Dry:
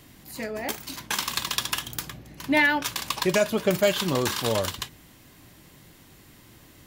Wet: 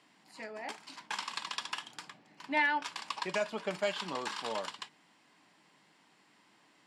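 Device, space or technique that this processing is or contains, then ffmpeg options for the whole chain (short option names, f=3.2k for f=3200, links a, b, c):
television speaker: -af "highpass=f=220:w=0.5412,highpass=f=220:w=1.3066,equalizer=f=250:t=q:w=4:g=-7,equalizer=f=360:t=q:w=4:g=-8,equalizer=f=530:t=q:w=4:g=-6,equalizer=f=900:t=q:w=4:g=5,equalizer=f=3.7k:t=q:w=4:g=-4,equalizer=f=6.3k:t=q:w=4:g=-9,lowpass=f=7.4k:w=0.5412,lowpass=f=7.4k:w=1.3066,volume=-8.5dB"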